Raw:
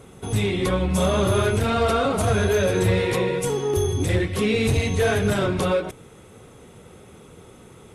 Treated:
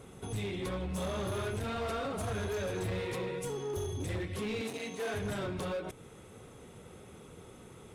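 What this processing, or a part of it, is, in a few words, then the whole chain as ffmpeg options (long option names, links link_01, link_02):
clipper into limiter: -filter_complex "[0:a]asoftclip=type=hard:threshold=-18.5dB,alimiter=level_in=2dB:limit=-24dB:level=0:latency=1:release=169,volume=-2dB,asettb=1/sr,asplit=3[link_01][link_02][link_03];[link_01]atrim=end=4.614[link_04];[link_02]atrim=start=4.61:end=5.14,asetpts=PTS-STARTPTS,afade=type=in:duration=0.004:curve=qsin,afade=type=out:start_time=0.526:duration=0.004:curve=qsin,highpass=frequency=200:width=0.5412,highpass=frequency=200:width=1.3066[link_05];[link_03]atrim=start=5.136[link_06];[link_04][link_05]acrossfade=duration=0.004:curve1=hsin:curve2=qsin[link_07];[link_07][link_06]acrossfade=duration=0.004:curve1=qsin:curve2=hsin,volume=-5.5dB"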